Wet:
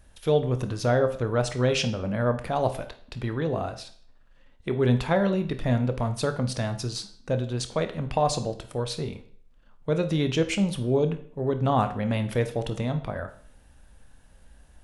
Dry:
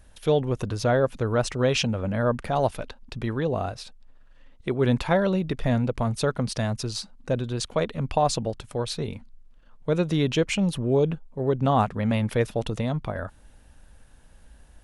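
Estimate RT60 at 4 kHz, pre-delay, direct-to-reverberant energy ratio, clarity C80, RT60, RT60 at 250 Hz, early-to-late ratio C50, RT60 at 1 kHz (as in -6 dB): 0.50 s, 15 ms, 8.0 dB, 16.5 dB, 0.55 s, 0.50 s, 13.0 dB, 0.50 s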